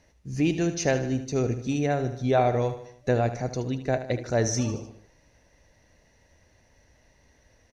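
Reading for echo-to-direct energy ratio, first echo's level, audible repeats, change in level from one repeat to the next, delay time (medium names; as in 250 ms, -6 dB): -10.0 dB, -11.5 dB, 4, -5.5 dB, 76 ms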